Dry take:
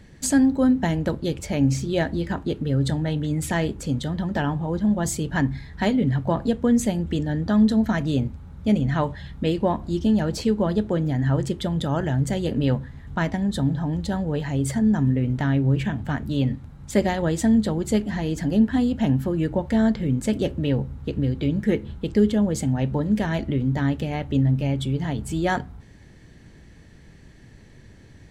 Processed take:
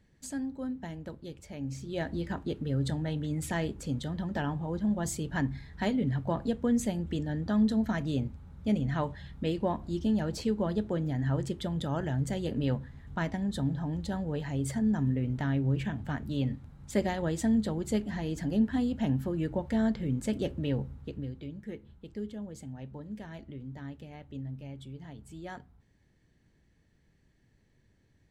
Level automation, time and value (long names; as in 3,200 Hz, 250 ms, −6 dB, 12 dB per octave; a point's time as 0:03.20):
0:01.63 −17.5 dB
0:02.15 −8 dB
0:20.86 −8 dB
0:21.55 −19.5 dB